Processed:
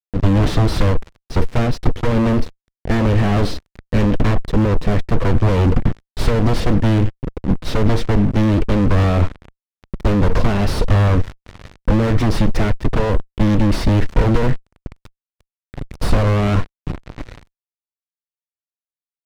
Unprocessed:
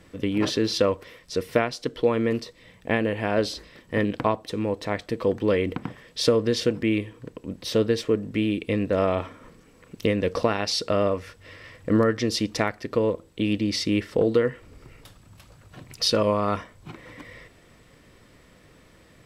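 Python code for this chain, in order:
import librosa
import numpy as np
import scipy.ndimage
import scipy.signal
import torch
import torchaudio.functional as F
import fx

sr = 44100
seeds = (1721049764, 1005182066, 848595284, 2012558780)

y = fx.cheby_harmonics(x, sr, harmonics=(8,), levels_db=(-10,), full_scale_db=-6.5)
y = fx.fuzz(y, sr, gain_db=40.0, gate_db=-38.0)
y = fx.riaa(y, sr, side='playback')
y = y * librosa.db_to_amplitude(-6.5)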